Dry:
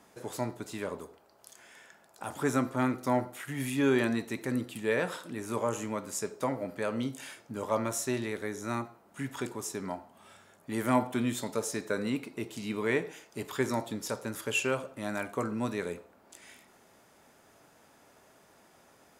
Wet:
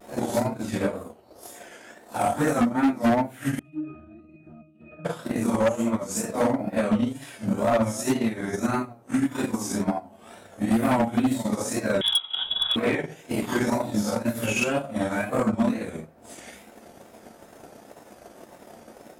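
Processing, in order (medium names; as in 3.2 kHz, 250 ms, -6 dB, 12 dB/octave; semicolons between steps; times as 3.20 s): phase randomisation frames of 200 ms; wow and flutter 110 cents; on a send at -8 dB: reverberation RT60 0.20 s, pre-delay 3 ms; on the sum: band noise 290–570 Hz -62 dBFS; in parallel at +2 dB: compression 6:1, threshold -36 dBFS, peak gain reduction 17.5 dB; on the sum: peaking EQ 690 Hz +10 dB 0.23 oct; transient shaper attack +11 dB, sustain -8 dB; 12.01–12.76 s: frequency inversion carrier 3.6 kHz; overload inside the chain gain 16.5 dB; 3.59–5.05 s: pitch-class resonator D#, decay 0.46 s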